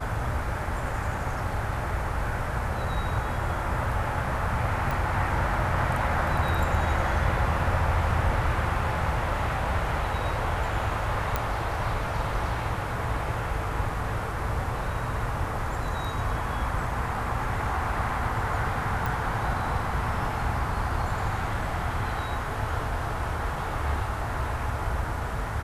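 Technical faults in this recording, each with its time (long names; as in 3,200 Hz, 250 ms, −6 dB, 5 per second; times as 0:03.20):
0:04.91: click
0:11.36: click −11 dBFS
0:19.06: click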